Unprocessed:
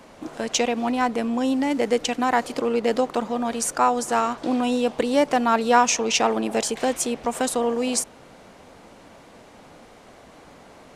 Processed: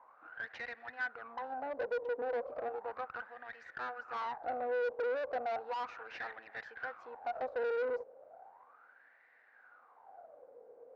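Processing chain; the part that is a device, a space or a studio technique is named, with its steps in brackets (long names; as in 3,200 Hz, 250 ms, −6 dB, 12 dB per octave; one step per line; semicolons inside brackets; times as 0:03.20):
wah-wah guitar rig (LFO wah 0.35 Hz 470–1,900 Hz, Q 10; tube saturation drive 40 dB, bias 0.75; loudspeaker in its box 89–4,300 Hz, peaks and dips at 110 Hz −7 dB, 190 Hz −5 dB, 490 Hz +7 dB, 770 Hz +8 dB, 1,500 Hz +8 dB, 3,200 Hz −7 dB)
level +1 dB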